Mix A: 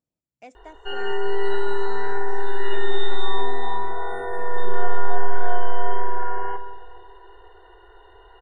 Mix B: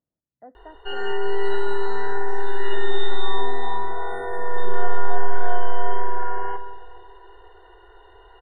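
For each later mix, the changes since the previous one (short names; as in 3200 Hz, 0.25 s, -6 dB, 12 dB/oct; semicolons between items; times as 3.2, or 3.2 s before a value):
speech: add brick-wall FIR low-pass 2000 Hz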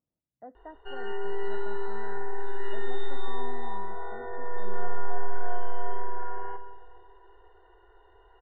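background -7.5 dB; master: add air absorption 290 m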